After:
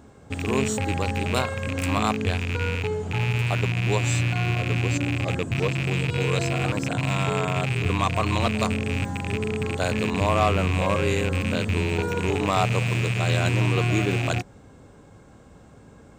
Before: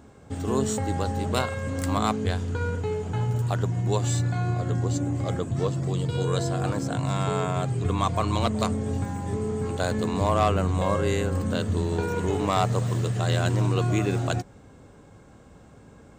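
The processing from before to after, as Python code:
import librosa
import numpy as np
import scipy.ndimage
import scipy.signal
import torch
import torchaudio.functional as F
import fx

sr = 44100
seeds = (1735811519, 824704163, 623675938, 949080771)

y = fx.rattle_buzz(x, sr, strikes_db=-27.0, level_db=-19.0)
y = F.gain(torch.from_numpy(y), 1.0).numpy()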